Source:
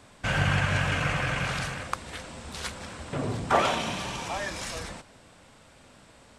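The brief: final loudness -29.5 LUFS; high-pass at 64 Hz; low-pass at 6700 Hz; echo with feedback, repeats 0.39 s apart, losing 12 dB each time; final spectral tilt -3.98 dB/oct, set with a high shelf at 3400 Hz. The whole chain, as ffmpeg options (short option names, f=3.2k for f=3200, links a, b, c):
-af "highpass=64,lowpass=6.7k,highshelf=f=3.4k:g=5.5,aecho=1:1:390|780|1170:0.251|0.0628|0.0157,volume=-1.5dB"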